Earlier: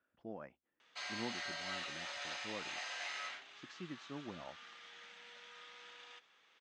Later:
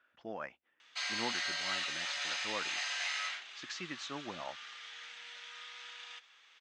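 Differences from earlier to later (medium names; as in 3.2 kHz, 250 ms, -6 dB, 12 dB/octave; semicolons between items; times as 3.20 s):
speech +7.5 dB; master: add tilt shelf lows -9 dB, about 730 Hz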